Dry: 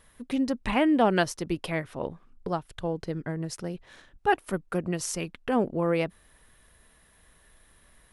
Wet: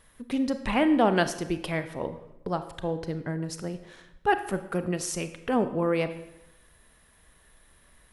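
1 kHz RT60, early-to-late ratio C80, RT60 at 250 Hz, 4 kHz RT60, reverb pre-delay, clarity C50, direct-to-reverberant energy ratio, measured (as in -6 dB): 0.90 s, 14.0 dB, 0.95 s, 0.75 s, 30 ms, 12.0 dB, 10.0 dB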